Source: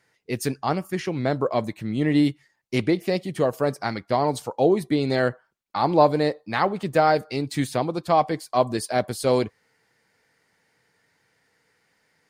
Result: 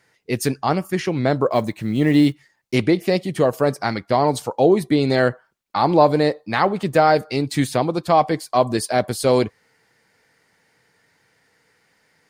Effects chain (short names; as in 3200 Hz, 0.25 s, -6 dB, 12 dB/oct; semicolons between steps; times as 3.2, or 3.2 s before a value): 1.51–2.75 block floating point 7-bit; in parallel at -2 dB: limiter -12.5 dBFS, peak gain reduction 8.5 dB